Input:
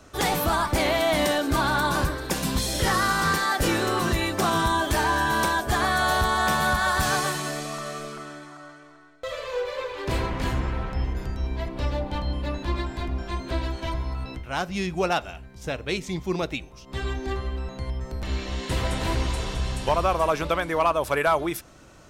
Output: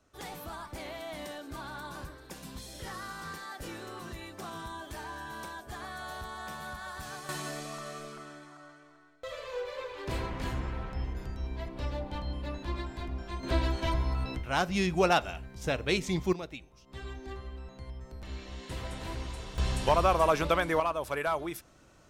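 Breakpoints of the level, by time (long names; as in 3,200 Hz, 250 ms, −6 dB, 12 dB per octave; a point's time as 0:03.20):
−18.5 dB
from 0:07.29 −8 dB
from 0:13.43 −0.5 dB
from 0:16.33 −12.5 dB
from 0:19.58 −2 dB
from 0:20.80 −9 dB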